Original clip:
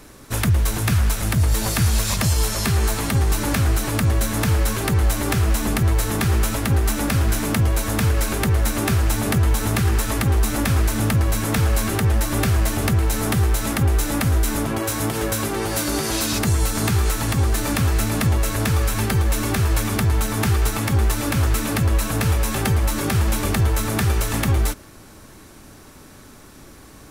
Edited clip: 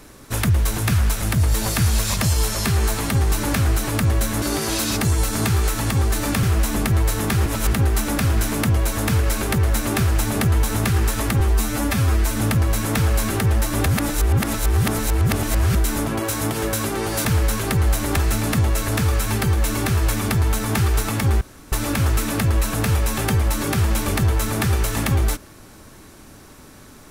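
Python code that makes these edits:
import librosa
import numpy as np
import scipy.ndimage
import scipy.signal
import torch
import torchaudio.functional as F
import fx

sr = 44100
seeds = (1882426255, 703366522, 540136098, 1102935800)

y = fx.edit(x, sr, fx.swap(start_s=4.42, length_s=0.92, other_s=15.84, other_length_s=2.01),
    fx.reverse_span(start_s=6.37, length_s=0.27),
    fx.stretch_span(start_s=10.31, length_s=0.64, factor=1.5),
    fx.reverse_span(start_s=12.45, length_s=1.89),
    fx.insert_room_tone(at_s=21.09, length_s=0.31), tone=tone)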